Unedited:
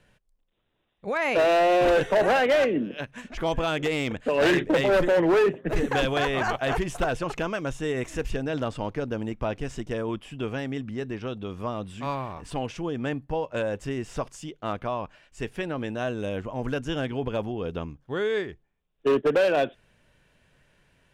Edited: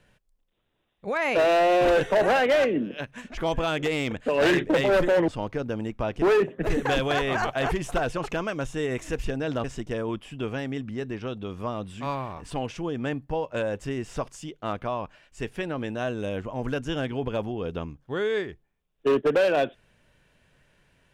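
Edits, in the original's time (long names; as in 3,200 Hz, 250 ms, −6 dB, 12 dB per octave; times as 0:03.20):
0:08.70–0:09.64: move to 0:05.28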